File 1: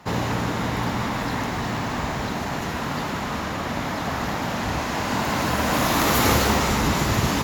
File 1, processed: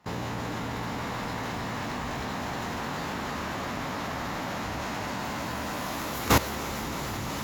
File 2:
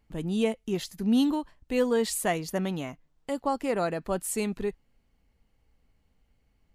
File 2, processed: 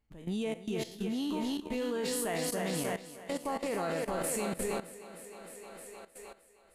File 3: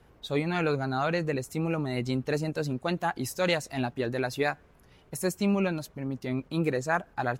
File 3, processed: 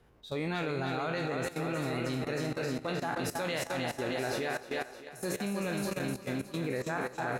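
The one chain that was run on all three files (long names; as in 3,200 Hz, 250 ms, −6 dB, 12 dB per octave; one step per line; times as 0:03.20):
peak hold with a decay on every bin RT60 0.51 s
feedback echo with a high-pass in the loop 309 ms, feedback 75%, high-pass 170 Hz, level −5 dB
output level in coarse steps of 15 dB
level −3 dB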